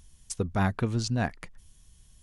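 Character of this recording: noise floor -59 dBFS; spectral tilt -5.5 dB/octave

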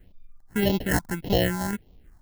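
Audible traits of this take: aliases and images of a low sample rate 1.2 kHz, jitter 0%; phasing stages 4, 1.7 Hz, lowest notch 440–1600 Hz

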